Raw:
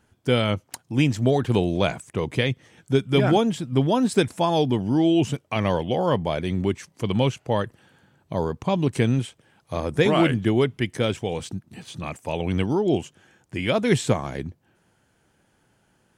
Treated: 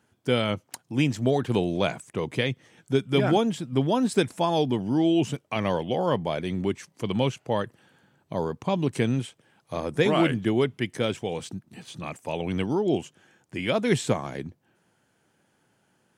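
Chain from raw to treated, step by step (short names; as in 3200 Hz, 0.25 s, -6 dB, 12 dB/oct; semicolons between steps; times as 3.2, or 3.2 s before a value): HPF 120 Hz; gain -2.5 dB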